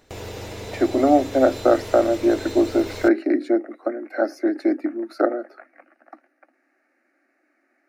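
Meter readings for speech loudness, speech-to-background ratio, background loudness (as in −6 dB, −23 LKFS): −21.0 LKFS, 13.5 dB, −34.5 LKFS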